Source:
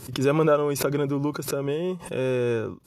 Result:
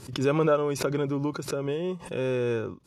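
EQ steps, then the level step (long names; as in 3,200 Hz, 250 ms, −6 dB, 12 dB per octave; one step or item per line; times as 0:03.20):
high-frequency loss of the air 67 metres
high-shelf EQ 4,800 Hz +6 dB
−2.5 dB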